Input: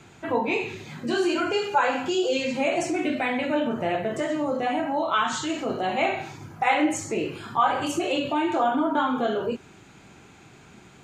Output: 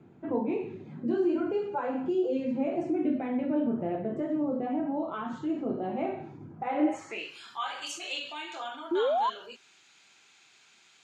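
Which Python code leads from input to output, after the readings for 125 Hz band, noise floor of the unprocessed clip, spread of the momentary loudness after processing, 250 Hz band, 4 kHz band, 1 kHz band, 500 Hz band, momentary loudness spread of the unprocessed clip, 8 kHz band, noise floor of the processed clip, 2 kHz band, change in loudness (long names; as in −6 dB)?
−5.5 dB, −51 dBFS, 11 LU, −2.5 dB, −8.5 dB, −9.5 dB, −5.0 dB, 6 LU, −12.0 dB, −61 dBFS, −13.5 dB, −6.0 dB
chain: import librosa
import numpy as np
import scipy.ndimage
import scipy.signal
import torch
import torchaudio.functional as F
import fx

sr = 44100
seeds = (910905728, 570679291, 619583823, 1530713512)

y = fx.filter_sweep_bandpass(x, sr, from_hz=250.0, to_hz=4400.0, start_s=6.72, end_s=7.31, q=1.1)
y = fx.spec_paint(y, sr, seeds[0], shape='rise', start_s=8.91, length_s=0.39, low_hz=320.0, high_hz=1100.0, level_db=-26.0)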